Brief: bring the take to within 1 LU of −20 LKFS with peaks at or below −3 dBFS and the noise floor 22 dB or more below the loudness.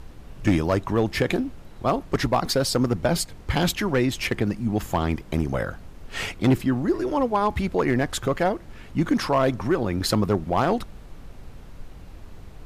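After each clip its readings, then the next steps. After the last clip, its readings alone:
share of clipped samples 0.7%; peaks flattened at −13.0 dBFS; background noise floor −44 dBFS; target noise floor −47 dBFS; integrated loudness −24.5 LKFS; sample peak −13.0 dBFS; target loudness −20.0 LKFS
→ clipped peaks rebuilt −13 dBFS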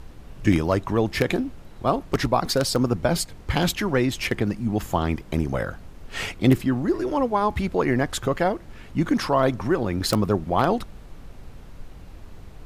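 share of clipped samples 0.0%; background noise floor −44 dBFS; target noise floor −46 dBFS
→ noise reduction from a noise print 6 dB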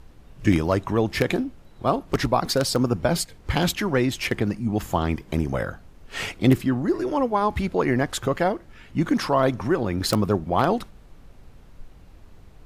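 background noise floor −49 dBFS; integrated loudness −24.0 LKFS; sample peak −4.0 dBFS; target loudness −20.0 LKFS
→ level +4 dB
brickwall limiter −3 dBFS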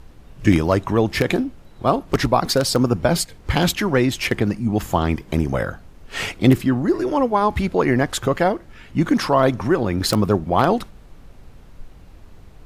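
integrated loudness −20.0 LKFS; sample peak −3.0 dBFS; background noise floor −45 dBFS

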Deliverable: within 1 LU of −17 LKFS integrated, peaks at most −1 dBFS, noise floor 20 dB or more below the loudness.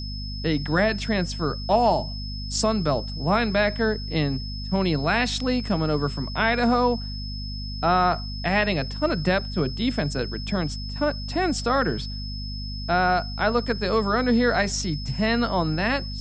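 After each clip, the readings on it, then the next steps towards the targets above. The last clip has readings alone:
mains hum 50 Hz; hum harmonics up to 250 Hz; level of the hum −30 dBFS; interfering tone 5,200 Hz; level of the tone −36 dBFS; integrated loudness −24.0 LKFS; sample peak −7.0 dBFS; target loudness −17.0 LKFS
→ hum removal 50 Hz, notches 5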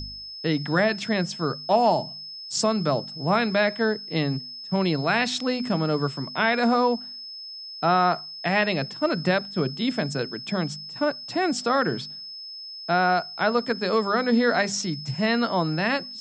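mains hum none found; interfering tone 5,200 Hz; level of the tone −36 dBFS
→ notch filter 5,200 Hz, Q 30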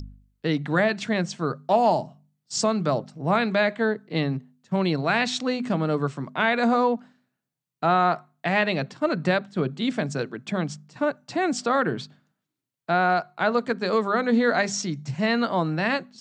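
interfering tone none found; integrated loudness −24.5 LKFS; sample peak −7.0 dBFS; target loudness −17.0 LKFS
→ level +7.5 dB
brickwall limiter −1 dBFS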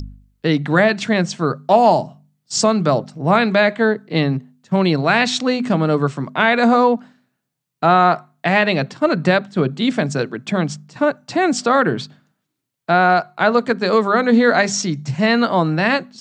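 integrated loudness −17.0 LKFS; sample peak −1.0 dBFS; background noise floor −75 dBFS

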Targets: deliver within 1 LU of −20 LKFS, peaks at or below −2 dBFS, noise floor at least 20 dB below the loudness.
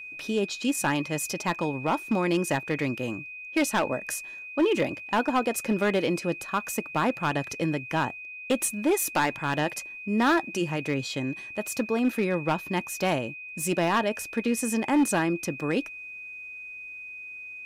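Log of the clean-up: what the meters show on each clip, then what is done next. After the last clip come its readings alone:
share of clipped samples 1.1%; peaks flattened at −17.5 dBFS; interfering tone 2,500 Hz; level of the tone −38 dBFS; integrated loudness −27.5 LKFS; sample peak −17.5 dBFS; target loudness −20.0 LKFS
→ clipped peaks rebuilt −17.5 dBFS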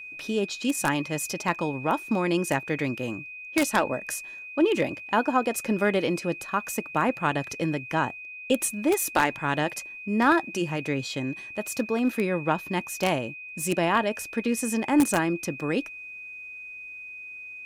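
share of clipped samples 0.0%; interfering tone 2,500 Hz; level of the tone −38 dBFS
→ notch filter 2,500 Hz, Q 30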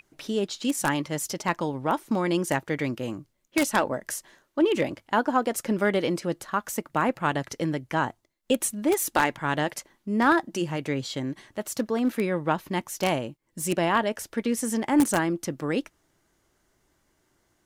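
interfering tone none found; integrated loudness −27.0 LKFS; sample peak −8.0 dBFS; target loudness −20.0 LKFS
→ level +7 dB
brickwall limiter −2 dBFS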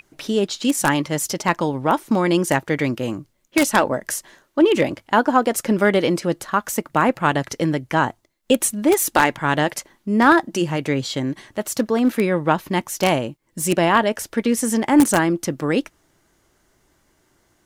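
integrated loudness −20.0 LKFS; sample peak −2.0 dBFS; background noise floor −64 dBFS

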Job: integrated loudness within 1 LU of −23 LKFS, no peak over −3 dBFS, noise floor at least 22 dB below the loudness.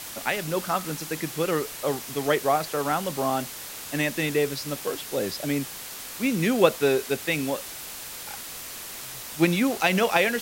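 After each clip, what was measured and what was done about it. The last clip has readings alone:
background noise floor −38 dBFS; target noise floor −49 dBFS; integrated loudness −26.5 LKFS; sample peak −3.5 dBFS; target loudness −23.0 LKFS
→ noise reduction from a noise print 11 dB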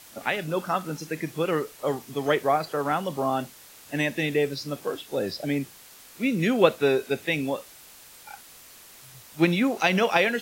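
background noise floor −49 dBFS; integrated loudness −26.0 LKFS; sample peak −3.5 dBFS; target loudness −23.0 LKFS
→ level +3 dB
brickwall limiter −3 dBFS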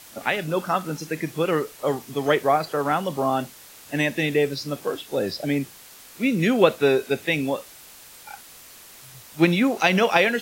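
integrated loudness −23.0 LKFS; sample peak −3.0 dBFS; background noise floor −46 dBFS

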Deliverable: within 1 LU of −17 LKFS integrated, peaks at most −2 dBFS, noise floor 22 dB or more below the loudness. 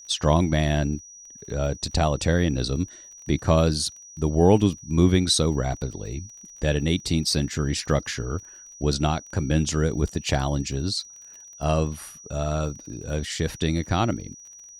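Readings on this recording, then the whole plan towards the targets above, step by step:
crackle rate 32 per second; interfering tone 5,800 Hz; level of the tone −43 dBFS; integrated loudness −24.5 LKFS; sample peak −5.5 dBFS; target loudness −17.0 LKFS
→ click removal
notch filter 5,800 Hz, Q 30
level +7.5 dB
brickwall limiter −2 dBFS

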